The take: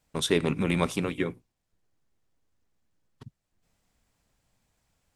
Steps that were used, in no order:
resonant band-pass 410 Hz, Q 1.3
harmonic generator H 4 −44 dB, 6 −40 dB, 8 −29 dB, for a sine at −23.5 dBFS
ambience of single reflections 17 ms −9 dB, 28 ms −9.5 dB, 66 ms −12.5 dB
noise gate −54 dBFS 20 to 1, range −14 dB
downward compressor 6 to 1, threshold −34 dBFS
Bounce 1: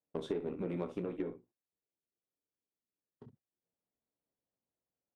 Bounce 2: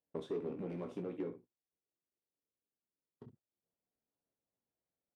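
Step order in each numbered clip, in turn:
ambience of single reflections, then noise gate, then resonant band-pass, then downward compressor, then harmonic generator
harmonic generator, then ambience of single reflections, then downward compressor, then noise gate, then resonant band-pass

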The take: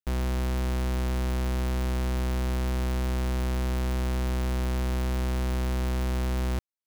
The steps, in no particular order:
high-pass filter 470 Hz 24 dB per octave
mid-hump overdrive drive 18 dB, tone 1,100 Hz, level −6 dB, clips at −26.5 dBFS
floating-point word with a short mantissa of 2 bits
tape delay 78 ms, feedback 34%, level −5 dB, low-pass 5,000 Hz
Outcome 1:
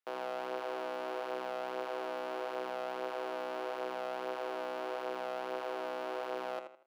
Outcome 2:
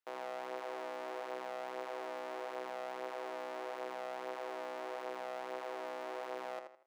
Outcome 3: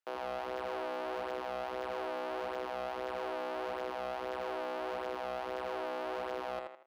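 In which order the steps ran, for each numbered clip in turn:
high-pass filter, then floating-point word with a short mantissa, then mid-hump overdrive, then tape delay
floating-point word with a short mantissa, then mid-hump overdrive, then high-pass filter, then tape delay
floating-point word with a short mantissa, then high-pass filter, then tape delay, then mid-hump overdrive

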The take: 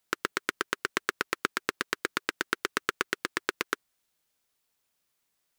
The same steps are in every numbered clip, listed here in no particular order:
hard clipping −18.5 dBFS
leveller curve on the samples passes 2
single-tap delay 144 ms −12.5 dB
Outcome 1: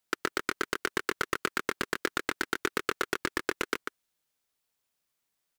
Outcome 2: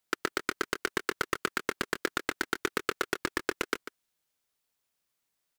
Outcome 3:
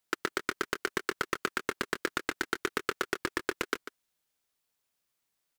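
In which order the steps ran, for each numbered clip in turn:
leveller curve on the samples, then single-tap delay, then hard clipping
leveller curve on the samples, then hard clipping, then single-tap delay
hard clipping, then leveller curve on the samples, then single-tap delay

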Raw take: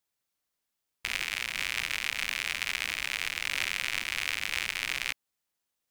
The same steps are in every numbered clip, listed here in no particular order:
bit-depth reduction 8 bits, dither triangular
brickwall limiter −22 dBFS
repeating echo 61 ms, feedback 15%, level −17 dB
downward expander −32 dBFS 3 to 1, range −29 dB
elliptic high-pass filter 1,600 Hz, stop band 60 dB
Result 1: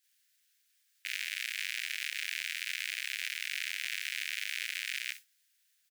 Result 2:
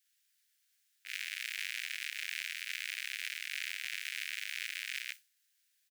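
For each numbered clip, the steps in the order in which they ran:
repeating echo, then bit-depth reduction, then downward expander, then elliptic high-pass filter, then brickwall limiter
bit-depth reduction, then elliptic high-pass filter, then brickwall limiter, then repeating echo, then downward expander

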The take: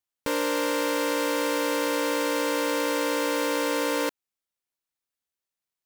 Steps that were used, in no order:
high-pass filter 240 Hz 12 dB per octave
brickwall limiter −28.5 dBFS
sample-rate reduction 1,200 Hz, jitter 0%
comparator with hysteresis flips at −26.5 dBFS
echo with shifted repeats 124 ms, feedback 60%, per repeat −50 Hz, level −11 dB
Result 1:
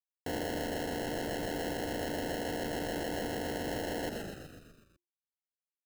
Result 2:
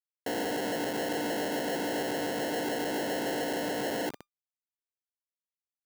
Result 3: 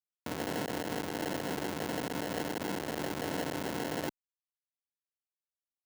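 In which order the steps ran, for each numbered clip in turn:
comparator with hysteresis, then high-pass filter, then sample-rate reduction, then echo with shifted repeats, then brickwall limiter
echo with shifted repeats, then comparator with hysteresis, then sample-rate reduction, then brickwall limiter, then high-pass filter
echo with shifted repeats, then sample-rate reduction, then comparator with hysteresis, then brickwall limiter, then high-pass filter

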